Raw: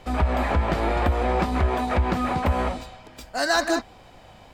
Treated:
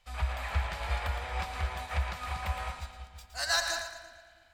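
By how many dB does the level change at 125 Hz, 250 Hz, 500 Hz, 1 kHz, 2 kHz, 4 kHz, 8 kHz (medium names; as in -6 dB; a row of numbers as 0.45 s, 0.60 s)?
-9.5 dB, -26.5 dB, -16.5 dB, -12.0 dB, -6.5 dB, -2.5 dB, -1.5 dB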